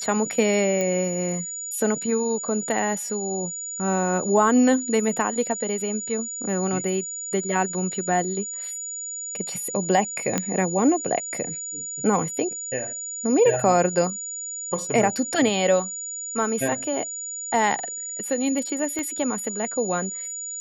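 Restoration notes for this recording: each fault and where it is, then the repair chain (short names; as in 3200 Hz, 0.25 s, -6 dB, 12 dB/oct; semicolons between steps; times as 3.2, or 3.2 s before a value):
tone 6900 Hz -30 dBFS
0.81 pop -12 dBFS
10.38 pop -8 dBFS
18.99 pop -16 dBFS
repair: de-click; notch 6900 Hz, Q 30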